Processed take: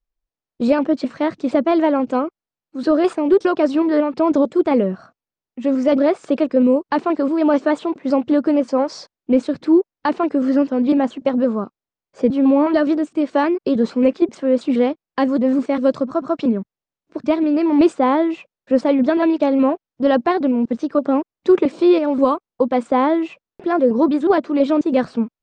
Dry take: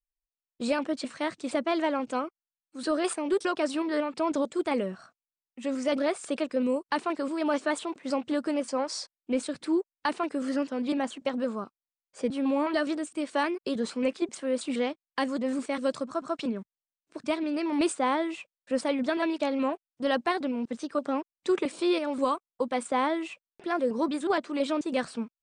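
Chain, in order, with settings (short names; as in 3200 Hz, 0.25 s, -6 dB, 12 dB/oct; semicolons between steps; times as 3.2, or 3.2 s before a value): LPF 6500 Hz 24 dB/oct; tilt shelf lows +7 dB, about 1200 Hz; gain +7 dB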